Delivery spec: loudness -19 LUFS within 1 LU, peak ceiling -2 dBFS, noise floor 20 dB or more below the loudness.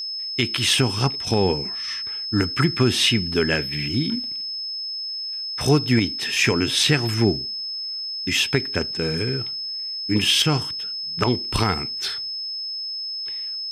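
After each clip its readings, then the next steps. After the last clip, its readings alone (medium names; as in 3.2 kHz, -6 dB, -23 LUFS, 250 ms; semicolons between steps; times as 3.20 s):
steady tone 5.2 kHz; tone level -27 dBFS; loudness -22.0 LUFS; peak level -4.5 dBFS; loudness target -19.0 LUFS
-> band-stop 5.2 kHz, Q 30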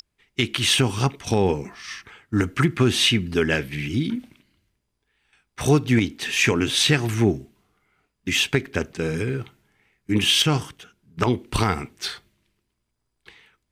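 steady tone not found; loudness -22.0 LUFS; peak level -5.5 dBFS; loudness target -19.0 LUFS
-> trim +3 dB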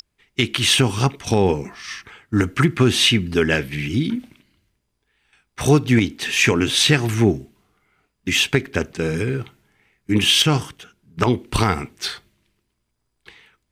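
loudness -19.0 LUFS; peak level -2.5 dBFS; noise floor -73 dBFS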